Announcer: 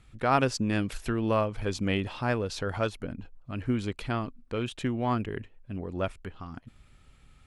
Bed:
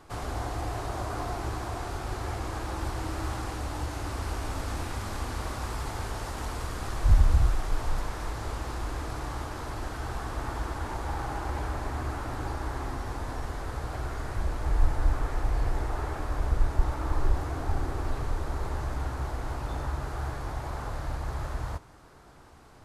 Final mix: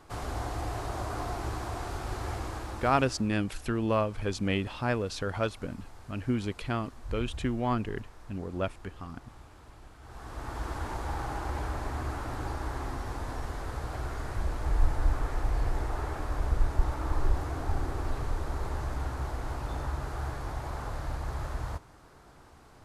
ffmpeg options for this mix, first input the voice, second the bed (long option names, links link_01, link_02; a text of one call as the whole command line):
ffmpeg -i stem1.wav -i stem2.wav -filter_complex "[0:a]adelay=2600,volume=-1dB[link_01];[1:a]volume=15dB,afade=type=out:start_time=2.35:duration=0.93:silence=0.149624,afade=type=in:start_time=10.01:duration=0.73:silence=0.149624[link_02];[link_01][link_02]amix=inputs=2:normalize=0" out.wav